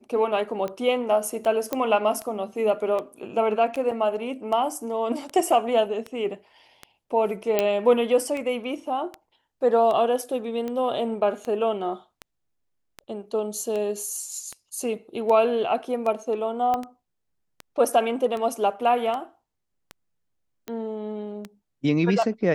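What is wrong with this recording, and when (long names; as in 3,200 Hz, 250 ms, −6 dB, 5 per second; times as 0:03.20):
scratch tick 78 rpm −19 dBFS
0:01.73: click −11 dBFS
0:03.91: drop-out 4.9 ms
0:07.59: click −7 dBFS
0:16.74: click −14 dBFS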